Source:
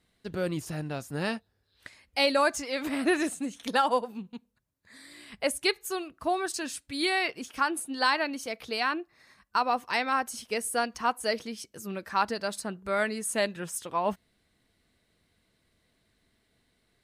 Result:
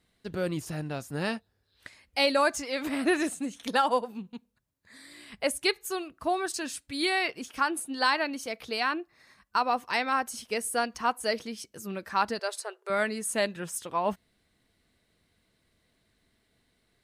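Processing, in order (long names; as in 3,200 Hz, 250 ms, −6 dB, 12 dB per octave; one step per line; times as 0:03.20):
0:12.39–0:12.90: linear-phase brick-wall band-pass 370–13,000 Hz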